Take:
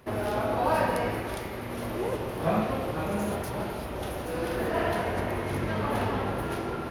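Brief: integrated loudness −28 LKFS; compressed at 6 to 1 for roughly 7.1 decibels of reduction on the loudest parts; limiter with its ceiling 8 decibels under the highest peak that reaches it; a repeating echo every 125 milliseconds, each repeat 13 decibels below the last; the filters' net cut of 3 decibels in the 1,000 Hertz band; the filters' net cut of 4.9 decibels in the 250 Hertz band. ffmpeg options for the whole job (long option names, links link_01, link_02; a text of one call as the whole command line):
ffmpeg -i in.wav -af "equalizer=frequency=250:width_type=o:gain=-6.5,equalizer=frequency=1000:width_type=o:gain=-3.5,acompressor=threshold=-31dB:ratio=6,alimiter=level_in=4.5dB:limit=-24dB:level=0:latency=1,volume=-4.5dB,aecho=1:1:125|250|375:0.224|0.0493|0.0108,volume=9.5dB" out.wav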